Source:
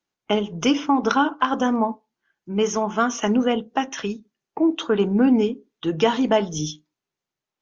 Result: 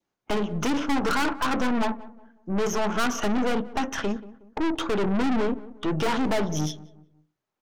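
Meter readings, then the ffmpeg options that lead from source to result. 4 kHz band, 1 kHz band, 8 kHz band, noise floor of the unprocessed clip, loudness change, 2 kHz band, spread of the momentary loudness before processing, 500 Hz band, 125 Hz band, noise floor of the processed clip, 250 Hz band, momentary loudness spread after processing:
-4.0 dB, -4.5 dB, no reading, under -85 dBFS, -4.5 dB, -1.0 dB, 11 LU, -5.5 dB, -0.5 dB, -83 dBFS, -5.0 dB, 7 LU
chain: -filter_complex "[0:a]adynamicequalizer=threshold=0.0126:dfrequency=1400:dqfactor=2.9:tfrequency=1400:tqfactor=2.9:attack=5:release=100:ratio=0.375:range=3:mode=boostabove:tftype=bell,acrossover=split=1700[s0][s1];[s0]acontrast=85[s2];[s2][s1]amix=inputs=2:normalize=0,aeval=exprs='(tanh(14.1*val(0)+0.6)-tanh(0.6))/14.1':c=same,asplit=2[s3][s4];[s4]adelay=183,lowpass=f=1100:p=1,volume=0.141,asplit=2[s5][s6];[s6]adelay=183,lowpass=f=1100:p=1,volume=0.4,asplit=2[s7][s8];[s8]adelay=183,lowpass=f=1100:p=1,volume=0.4[s9];[s3][s5][s7][s9]amix=inputs=4:normalize=0"

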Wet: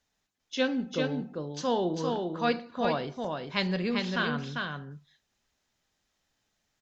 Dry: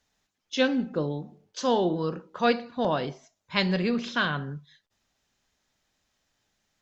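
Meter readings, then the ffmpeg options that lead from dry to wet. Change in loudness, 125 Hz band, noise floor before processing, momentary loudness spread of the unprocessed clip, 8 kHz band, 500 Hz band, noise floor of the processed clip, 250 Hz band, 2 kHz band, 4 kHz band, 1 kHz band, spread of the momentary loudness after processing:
-3.0 dB, -2.5 dB, -80 dBFS, 11 LU, no reading, -3.0 dB, -79 dBFS, -2.5 dB, -2.5 dB, -2.5 dB, -2.5 dB, 7 LU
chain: -af "aecho=1:1:397:0.631,volume=0.631"

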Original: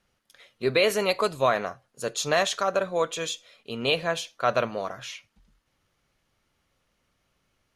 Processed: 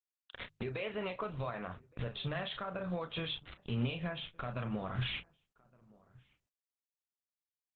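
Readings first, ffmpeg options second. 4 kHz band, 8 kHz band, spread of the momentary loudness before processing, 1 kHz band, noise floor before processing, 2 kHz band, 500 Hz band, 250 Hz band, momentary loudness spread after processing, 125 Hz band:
-11.0 dB, under -40 dB, 14 LU, -15.5 dB, -74 dBFS, -13.5 dB, -16.5 dB, -5.0 dB, 7 LU, +1.0 dB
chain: -filter_complex "[0:a]aresample=11025,acrusher=bits=7:mix=0:aa=0.000001,aresample=44100,acompressor=threshold=0.0178:ratio=16,asplit=2[s0][s1];[s1]adelay=33,volume=0.355[s2];[s0][s2]amix=inputs=2:normalize=0,alimiter=level_in=4.22:limit=0.0631:level=0:latency=1:release=492,volume=0.237,afftdn=nr=19:nf=-67,asubboost=boost=9:cutoff=160,asplit=2[s3][s4];[s4]adelay=1166,volume=0.0501,highshelf=f=4000:g=-26.2[s5];[s3][s5]amix=inputs=2:normalize=0,asoftclip=type=tanh:threshold=0.0168,bandreject=f=50:t=h:w=6,bandreject=f=100:t=h:w=6,bandreject=f=150:t=h:w=6,aresample=8000,aresample=44100,volume=3.35" -ar 48000 -c:a libopus -b:a 12k

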